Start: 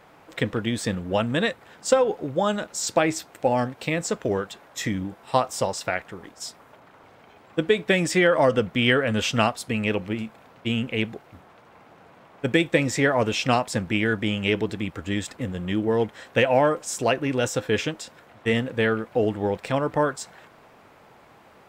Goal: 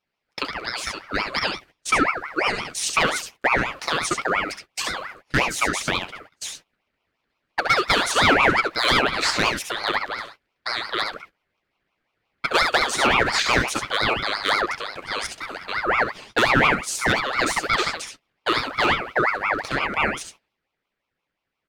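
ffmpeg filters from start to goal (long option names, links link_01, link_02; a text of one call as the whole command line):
ffmpeg -i in.wav -af "highpass=frequency=310:width=0.5412,highpass=frequency=310:width=1.3066,agate=range=-27dB:threshold=-40dB:ratio=16:detection=peak,asetnsamples=nb_out_samples=441:pad=0,asendcmd='1.43 equalizer g 5.5',equalizer=frequency=3700:width_type=o:width=0.52:gain=11.5,dynaudnorm=framelen=150:gausssize=31:maxgain=11dB,asoftclip=type=hard:threshold=-9.5dB,aecho=1:1:67|79:0.473|0.282,aeval=exprs='val(0)*sin(2*PI*1300*n/s+1300*0.4/5.7*sin(2*PI*5.7*n/s))':channel_layout=same" out.wav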